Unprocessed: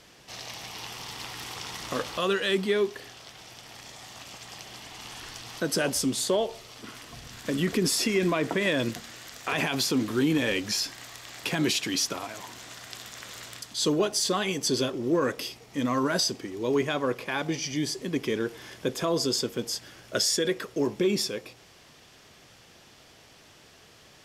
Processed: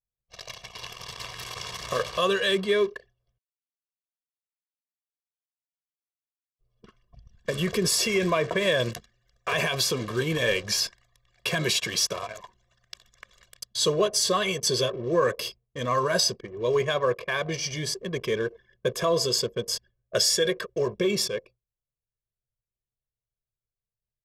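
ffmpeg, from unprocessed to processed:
-filter_complex "[0:a]asplit=3[s0][s1][s2];[s0]atrim=end=3.38,asetpts=PTS-STARTPTS,afade=t=out:st=3.376:d=0.004:c=hsin[s3];[s1]atrim=start=3.38:end=6.59,asetpts=PTS-STARTPTS,volume=0[s4];[s2]atrim=start=6.59,asetpts=PTS-STARTPTS,afade=t=in:d=0.004:c=hsin[s5];[s3][s4][s5]concat=n=3:v=0:a=1,agate=range=0.0224:threshold=0.01:ratio=3:detection=peak,anlmdn=1,aecho=1:1:1.8:0.89"

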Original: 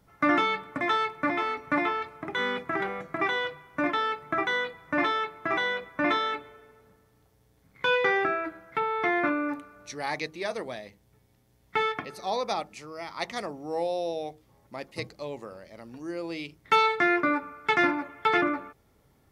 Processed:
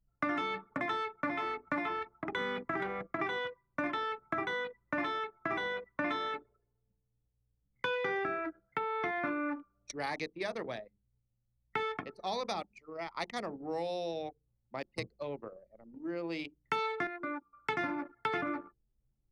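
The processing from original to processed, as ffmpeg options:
-filter_complex "[0:a]asplit=3[s0][s1][s2];[s0]atrim=end=17.07,asetpts=PTS-STARTPTS,afade=t=out:st=16.93:d=0.14:c=log:silence=0.298538[s3];[s1]atrim=start=17.07:end=17.53,asetpts=PTS-STARTPTS,volume=0.299[s4];[s2]atrim=start=17.53,asetpts=PTS-STARTPTS,afade=t=in:d=0.14:c=log:silence=0.298538[s5];[s3][s4][s5]concat=n=3:v=0:a=1,bandreject=f=50:t=h:w=6,bandreject=f=100:t=h:w=6,bandreject=f=150:t=h:w=6,bandreject=f=200:t=h:w=6,bandreject=f=250:t=h:w=6,bandreject=f=300:t=h:w=6,bandreject=f=350:t=h:w=6,bandreject=f=400:t=h:w=6,bandreject=f=450:t=h:w=6,anlmdn=1.58,acrossover=split=290|1200[s6][s7][s8];[s6]acompressor=threshold=0.00891:ratio=4[s9];[s7]acompressor=threshold=0.0126:ratio=4[s10];[s8]acompressor=threshold=0.0112:ratio=4[s11];[s9][s10][s11]amix=inputs=3:normalize=0"

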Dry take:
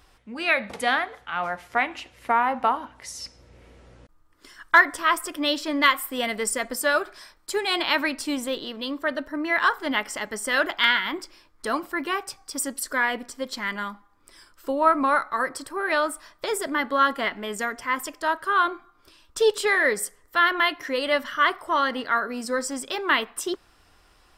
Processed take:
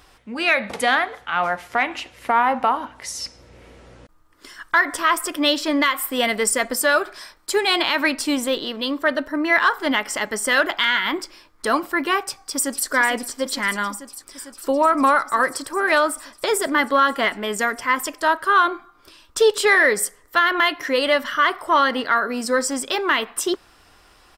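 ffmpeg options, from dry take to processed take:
-filter_complex "[0:a]asplit=2[s0][s1];[s1]afade=t=in:st=12.23:d=0.01,afade=t=out:st=12.89:d=0.01,aecho=0:1:450|900|1350|1800|2250|2700|3150|3600|4050|4500|4950|5400:0.316228|0.252982|0.202386|0.161909|0.129527|0.103622|0.0828972|0.0663178|0.0530542|0.0424434|0.0339547|0.0271638[s2];[s0][s2]amix=inputs=2:normalize=0,lowshelf=f=140:g=-5,alimiter=limit=0.211:level=0:latency=1:release=138,acontrast=74"

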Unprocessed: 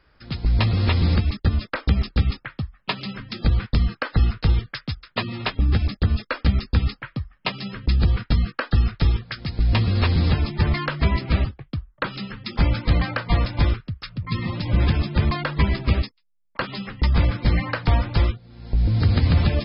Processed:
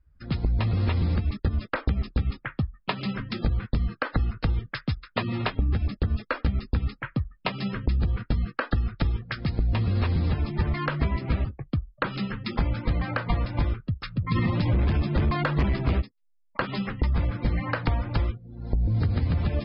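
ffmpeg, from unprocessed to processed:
-filter_complex "[0:a]asplit=3[s0][s1][s2];[s0]afade=t=out:st=14.35:d=0.02[s3];[s1]aeval=exprs='0.422*sin(PI/2*2*val(0)/0.422)':c=same,afade=t=in:st=14.35:d=0.02,afade=t=out:st=16:d=0.02[s4];[s2]afade=t=in:st=16:d=0.02[s5];[s3][s4][s5]amix=inputs=3:normalize=0,acompressor=threshold=0.0631:ratio=10,afftdn=nr=25:nf=-50,aemphasis=mode=reproduction:type=75fm,volume=1.33"

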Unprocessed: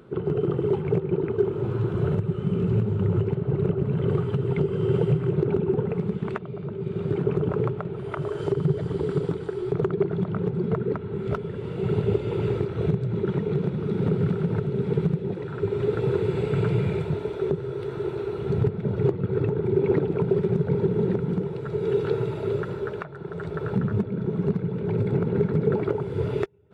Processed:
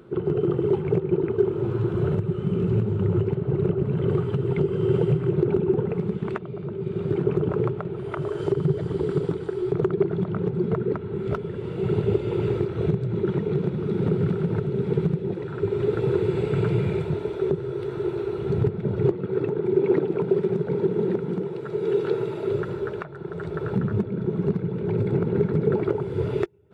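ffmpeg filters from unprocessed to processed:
-filter_complex "[0:a]asettb=1/sr,asplit=3[s0][s1][s2];[s0]atrim=end=19.114[s3];[s1]atrim=start=19.11:end=22.51,asetpts=PTS-STARTPTS,afade=t=in:d=0.004:c=qsin,afade=t=out:st=3.396:d=0.004:c=qsin,highpass=180[s4];[s2]atrim=start=22.506[s5];[s3][s4]acrossfade=d=0.004:c1=hsin:c2=qsin[s6];[s6][s5]acrossfade=d=0.004:c1=qsin:c2=hsin,equalizer=f=350:t=o:w=0.2:g=5.5"

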